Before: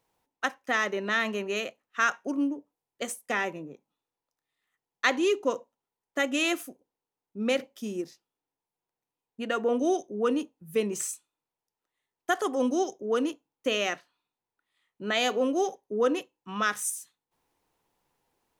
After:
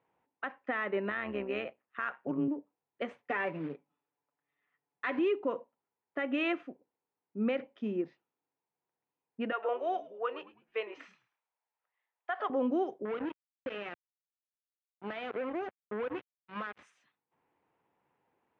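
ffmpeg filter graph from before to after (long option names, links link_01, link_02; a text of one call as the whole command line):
ffmpeg -i in.wav -filter_complex "[0:a]asettb=1/sr,asplit=3[link_01][link_02][link_03];[link_01]atrim=end=1.104[link_04];[link_02]atrim=start=1.1:end=2.48,asetpts=PTS-STARTPTS,afade=type=in:duration=0.004:curve=qsin,afade=type=out:start_time=1.376:duration=0.004:curve=qsin,asoftclip=type=hard:threshold=-15dB,tremolo=f=130:d=0.71[link_05];[link_03]atrim=start=2.476[link_06];[link_04][link_05]acrossfade=duration=0.004:curve1=hsin:curve2=qsin[link_07];[link_07][link_06]acrossfade=duration=0.004:curve1=qsin:curve2=hsin,asettb=1/sr,asplit=3[link_08][link_09][link_10];[link_08]atrim=end=3.114[link_11];[link_09]atrim=start=3.11:end=5.19,asetpts=PTS-STARTPTS,afade=type=in:duration=0.004:curve=qsin,afade=type=out:start_time=2.076:duration=0.004:curve=qsin,aecho=1:1:6.9:0.66,atrim=end_sample=91728,acrusher=bits=3:mode=log:mix=0:aa=0.000001[link_12];[link_10]atrim=start=5.186[link_13];[link_11][link_12]acrossfade=duration=0.004:curve1=hsin:curve2=qsin[link_14];[link_14][link_13]acrossfade=duration=0.004:curve1=qsin:curve2=hsin,asettb=1/sr,asplit=3[link_15][link_16][link_17];[link_15]atrim=end=9.524[link_18];[link_16]atrim=start=9.52:end=12.5,asetpts=PTS-STARTPTS,afade=type=in:duration=0.004:curve=qsin,afade=type=out:start_time=2.976:duration=0.004:curve=qsin,highpass=frequency=570:width=0.5412,highpass=frequency=570:width=1.3066,highshelf=frequency=6500:width_type=q:width=1.5:gain=-9.5,asplit=4[link_19][link_20][link_21][link_22];[link_20]adelay=105,afreqshift=-85,volume=-18dB[link_23];[link_21]adelay=210,afreqshift=-170,volume=-28.2dB[link_24];[link_22]adelay=315,afreqshift=-255,volume=-38.3dB[link_25];[link_19][link_23][link_24][link_25]amix=inputs=4:normalize=0,atrim=end_sample=131418[link_26];[link_17]atrim=start=12.496[link_27];[link_18][link_26]acrossfade=duration=0.004:curve1=hsin:curve2=qsin[link_28];[link_28][link_27]acrossfade=duration=0.004:curve1=qsin:curve2=hsin,asettb=1/sr,asplit=3[link_29][link_30][link_31];[link_29]atrim=end=13.054[link_32];[link_30]atrim=start=13.05:end=16.83,asetpts=PTS-STARTPTS,afade=type=in:duration=0.004:curve=qsin,afade=type=out:start_time=3.776:duration=0.004:curve=qsin,flanger=delay=1.8:depth=1.4:regen=61:speed=1.7:shape=sinusoidal,acompressor=threshold=-33dB:ratio=12:attack=3.2:release=140:knee=1:detection=peak,acrusher=bits=5:mix=0:aa=0.5[link_33];[link_31]atrim=start=16.826[link_34];[link_32][link_33]acrossfade=duration=0.004:curve1=hsin:curve2=qsin[link_35];[link_35][link_34]acrossfade=duration=0.004:curve1=qsin:curve2=hsin,lowpass=frequency=2500:width=0.5412,lowpass=frequency=2500:width=1.3066,alimiter=limit=-23dB:level=0:latency=1:release=128,highpass=110" out.wav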